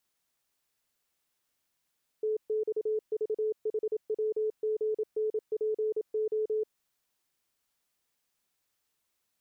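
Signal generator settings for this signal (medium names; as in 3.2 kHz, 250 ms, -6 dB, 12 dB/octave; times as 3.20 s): Morse "TXVHWGNPO" 27 wpm 432 Hz -26.5 dBFS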